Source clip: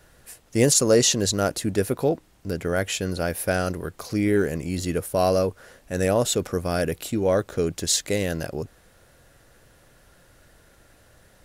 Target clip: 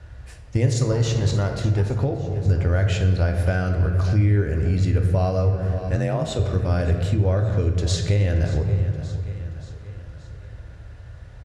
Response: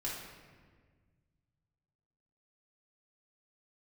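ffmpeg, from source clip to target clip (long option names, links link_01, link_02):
-filter_complex "[0:a]asettb=1/sr,asplit=3[link_01][link_02][link_03];[link_01]atrim=end=0.924[link_04];[link_02]atrim=start=0.92:end=1.93,asetpts=PTS-STARTPTS,afade=type=in:duration=0.004:curve=qsin,afade=type=out:start_time=1.006:duration=0.004:curve=qsin,aeval=exprs='if(lt(val(0),0),0.447*val(0),val(0))':channel_layout=same[link_05];[link_03]atrim=start=1.926[link_06];[link_04][link_05]acrossfade=duration=0.004:curve1=hsin:curve2=qsin[link_07];[link_07][link_06]acrossfade=duration=0.004:curve1=qsin:curve2=hsin,lowpass=8000,aemphasis=mode=reproduction:type=50fm,aecho=1:1:577|1154|1731|2308:0.119|0.0618|0.0321|0.0167,asplit=2[link_08][link_09];[1:a]atrim=start_sample=2205,asetrate=43659,aresample=44100[link_10];[link_09][link_10]afir=irnorm=-1:irlink=0,volume=-2dB[link_11];[link_08][link_11]amix=inputs=2:normalize=0,asettb=1/sr,asplit=3[link_12][link_13][link_14];[link_12]atrim=end=5.954[link_15];[link_13]atrim=start=5.95:end=6.39,asetpts=PTS-STARTPTS,afade=type=in:duration=0.004:curve=qsin,afade=type=out:start_time=0.436:duration=0.004:curve=qsin,afreqshift=36[link_16];[link_14]atrim=start=6.386[link_17];[link_15][link_16]acrossfade=duration=0.004:curve1=hsin:curve2=qsin[link_18];[link_18][link_17]acrossfade=duration=0.004:curve1=qsin:curve2=hsin,highpass=43,acompressor=threshold=-25dB:ratio=2.5,lowshelf=frequency=150:width_type=q:width=1.5:gain=13.5"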